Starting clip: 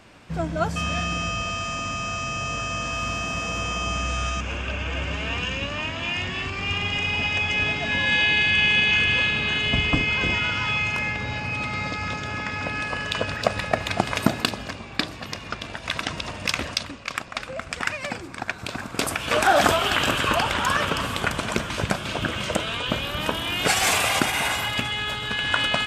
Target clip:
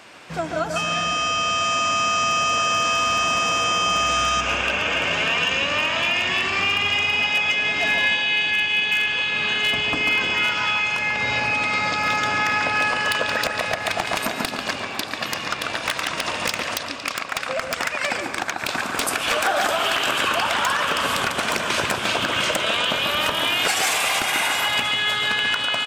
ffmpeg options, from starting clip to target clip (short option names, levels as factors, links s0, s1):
-filter_complex "[0:a]highpass=f=630:p=1,asplit=2[s0][s1];[s1]aecho=0:1:115|230|345|460:0.1|0.053|0.0281|0.0149[s2];[s0][s2]amix=inputs=2:normalize=0,acompressor=threshold=0.0355:ratio=12,asplit=2[s3][s4];[s4]adelay=142,lowpass=f=1700:p=1,volume=0.631,asplit=2[s5][s6];[s6]adelay=142,lowpass=f=1700:p=1,volume=0.38,asplit=2[s7][s8];[s8]adelay=142,lowpass=f=1700:p=1,volume=0.38,asplit=2[s9][s10];[s10]adelay=142,lowpass=f=1700:p=1,volume=0.38,asplit=2[s11][s12];[s12]adelay=142,lowpass=f=1700:p=1,volume=0.38[s13];[s5][s7][s9][s11][s13]amix=inputs=5:normalize=0[s14];[s3][s14]amix=inputs=2:normalize=0,dynaudnorm=f=190:g=17:m=1.41,aeval=exprs='0.1*(abs(mod(val(0)/0.1+3,4)-2)-1)':c=same,volume=2.51"